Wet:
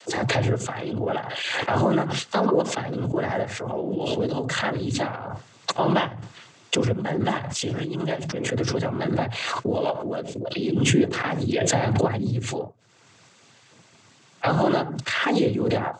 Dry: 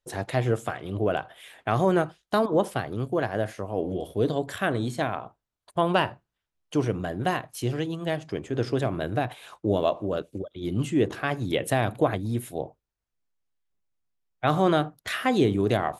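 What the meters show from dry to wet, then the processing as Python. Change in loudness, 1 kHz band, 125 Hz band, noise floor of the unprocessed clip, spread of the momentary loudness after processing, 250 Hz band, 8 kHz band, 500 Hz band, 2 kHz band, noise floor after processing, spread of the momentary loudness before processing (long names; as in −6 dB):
+2.0 dB, +1.5 dB, +3.0 dB, −85 dBFS, 8 LU, +2.5 dB, +11.0 dB, +1.0 dB, +4.0 dB, −55 dBFS, 9 LU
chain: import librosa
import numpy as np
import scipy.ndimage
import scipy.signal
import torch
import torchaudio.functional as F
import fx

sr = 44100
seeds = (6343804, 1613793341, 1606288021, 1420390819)

y = fx.noise_vocoder(x, sr, seeds[0], bands=16)
y = fx.pre_swell(y, sr, db_per_s=25.0)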